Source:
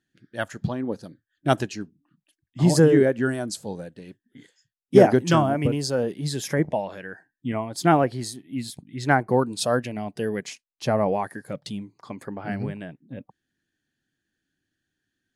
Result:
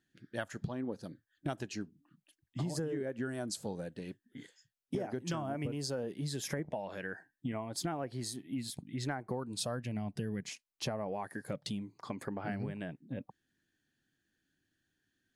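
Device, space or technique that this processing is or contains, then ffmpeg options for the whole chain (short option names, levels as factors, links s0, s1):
serial compression, leveller first: -filter_complex "[0:a]asettb=1/sr,asplit=3[s0][s1][s2];[s0]atrim=end=9.274[s3];[s1]atrim=start=9.27:end=10.49,asetpts=PTS-STARTPTS,afade=t=in:d=0.004:c=qsin,afade=t=out:st=1.216:d=0.004:c=qsin,asubboost=boost=11:cutoff=210[s4];[s2]atrim=start=10.486[s5];[s3][s4]acrossfade=d=0.004:c1=hsin:c2=qsin[s6];[s6][s5]acrossfade=d=0.004:c1=qsin:c2=hsin,acompressor=threshold=0.0891:ratio=2.5,acompressor=threshold=0.02:ratio=5,volume=0.891"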